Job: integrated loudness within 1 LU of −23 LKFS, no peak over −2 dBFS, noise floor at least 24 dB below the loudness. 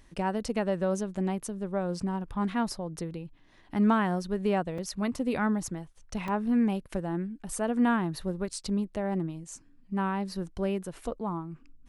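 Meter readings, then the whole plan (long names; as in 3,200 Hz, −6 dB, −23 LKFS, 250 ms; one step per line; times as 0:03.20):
number of dropouts 2; longest dropout 3.6 ms; integrated loudness −30.5 LKFS; sample peak −13.5 dBFS; target loudness −23.0 LKFS
→ repair the gap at 0:04.78/0:06.28, 3.6 ms
level +7.5 dB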